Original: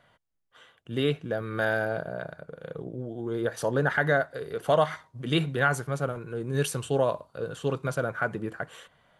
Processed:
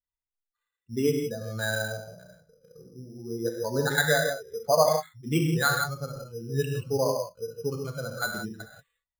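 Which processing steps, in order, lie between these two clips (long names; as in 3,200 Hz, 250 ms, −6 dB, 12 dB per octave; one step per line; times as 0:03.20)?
spectral dynamics exaggerated over time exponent 2
reverb whose tail is shaped and stops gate 200 ms flat, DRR 1.5 dB
bad sample-rate conversion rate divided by 8×, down filtered, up hold
level +2.5 dB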